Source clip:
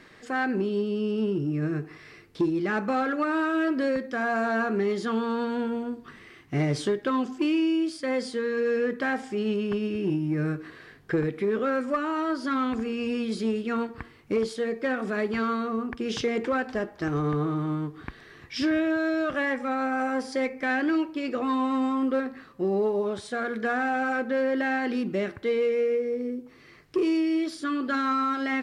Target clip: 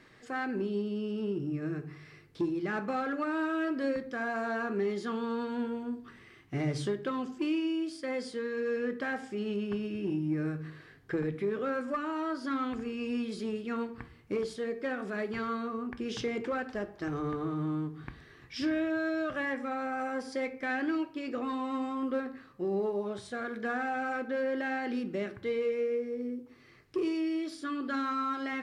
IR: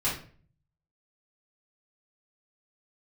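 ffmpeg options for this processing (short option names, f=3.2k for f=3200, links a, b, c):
-filter_complex "[0:a]asplit=2[a][b];[b]highpass=57[c];[1:a]atrim=start_sample=2205,lowshelf=f=180:g=9[d];[c][d]afir=irnorm=-1:irlink=0,volume=-19.5dB[e];[a][e]amix=inputs=2:normalize=0,volume=-7.5dB"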